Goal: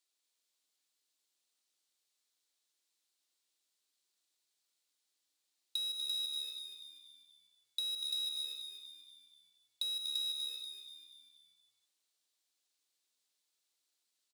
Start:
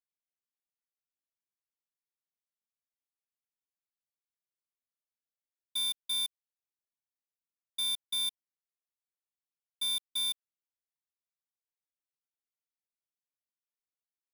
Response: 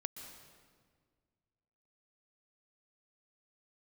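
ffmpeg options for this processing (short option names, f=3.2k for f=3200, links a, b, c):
-filter_complex "[0:a]acrossover=split=180[a][b];[b]acompressor=threshold=-53dB:ratio=2.5[c];[a][c]amix=inputs=2:normalize=0,afreqshift=270[d];[1:a]atrim=start_sample=2205,afade=t=out:st=0.39:d=0.01,atrim=end_sample=17640[e];[d][e]afir=irnorm=-1:irlink=0,acompressor=threshold=-54dB:ratio=6,equalizer=f=250:t=o:w=1:g=5,equalizer=f=4k:t=o:w=1:g=11,equalizer=f=8k:t=o:w=1:g=8,asplit=6[f][g][h][i][j][k];[g]adelay=242,afreqshift=-72,volume=-7.5dB[l];[h]adelay=484,afreqshift=-144,volume=-14.1dB[m];[i]adelay=726,afreqshift=-216,volume=-20.6dB[n];[j]adelay=968,afreqshift=-288,volume=-27.2dB[o];[k]adelay=1210,afreqshift=-360,volume=-33.7dB[p];[f][l][m][n][o][p]amix=inputs=6:normalize=0,volume=7dB"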